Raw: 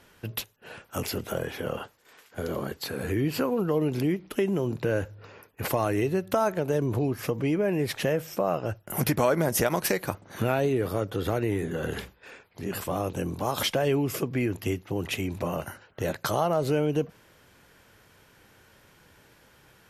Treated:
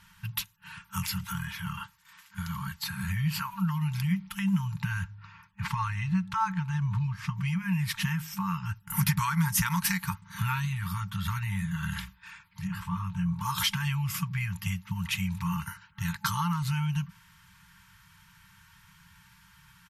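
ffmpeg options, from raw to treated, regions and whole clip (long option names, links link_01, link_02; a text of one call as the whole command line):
ffmpeg -i in.wav -filter_complex "[0:a]asettb=1/sr,asplit=3[link_01][link_02][link_03];[link_01]atrim=end=5.044[link_04];[link_02]atrim=start=5.04:end=7.37,asetpts=PTS-STARTPTS,afade=type=in:duration=0.004:curve=qsin,afade=type=out:start_time=2.326:duration=0.004:curve=qsin,lowpass=6700,highshelf=frequency=3800:gain=-6.5[link_05];[link_03]atrim=start=7.366[link_06];[link_04][link_05]acrossfade=duration=0.004:curve1=hsin:curve2=qsin[link_07];[link_07][link_06]acrossfade=duration=0.004:curve1=qsin:curve2=hsin,asettb=1/sr,asplit=3[link_08][link_09][link_10];[link_08]atrim=end=12.674[link_11];[link_09]atrim=start=12.67:end=13.41,asetpts=PTS-STARTPTS,afade=type=in:duration=0.004:curve=qsin,afade=type=out:start_time=0.736:duration=0.004:curve=qsin,lowpass=frequency=1400:poles=1,asplit=2[link_12][link_13];[link_13]adelay=18,volume=-9dB[link_14];[link_12][link_14]amix=inputs=2:normalize=0,atrim=end_sample=32634[link_15];[link_10]atrim=start=13.406[link_16];[link_11][link_15]acrossfade=duration=0.004:curve1=hsin:curve2=qsin[link_17];[link_17][link_16]acrossfade=duration=0.004:curve1=qsin:curve2=hsin,afftfilt=real='re*(1-between(b*sr/4096,200,870))':imag='im*(1-between(b*sr/4096,200,870))':win_size=4096:overlap=0.75,equalizer=frequency=140:width_type=o:width=2.5:gain=4.5,aecho=1:1:4.4:0.36" out.wav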